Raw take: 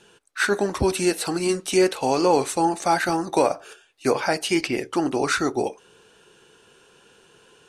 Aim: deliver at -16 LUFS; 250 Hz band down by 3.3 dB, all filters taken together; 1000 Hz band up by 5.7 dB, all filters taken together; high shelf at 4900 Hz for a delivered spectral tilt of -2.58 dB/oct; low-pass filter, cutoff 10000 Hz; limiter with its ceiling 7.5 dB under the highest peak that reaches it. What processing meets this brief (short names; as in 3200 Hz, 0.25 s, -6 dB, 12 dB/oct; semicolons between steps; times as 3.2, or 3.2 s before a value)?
LPF 10000 Hz; bell 250 Hz -6.5 dB; bell 1000 Hz +7.5 dB; high shelf 4900 Hz +8 dB; gain +6.5 dB; limiter -3.5 dBFS